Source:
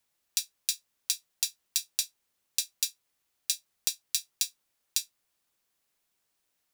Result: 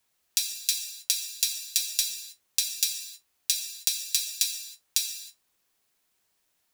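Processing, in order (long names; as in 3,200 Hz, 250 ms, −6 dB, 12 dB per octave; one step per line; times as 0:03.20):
0:03.54–0:04.00: high-pass filter 670 Hz 6 dB per octave
reverb whose tail is shaped and stops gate 340 ms falling, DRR 3 dB
level +3 dB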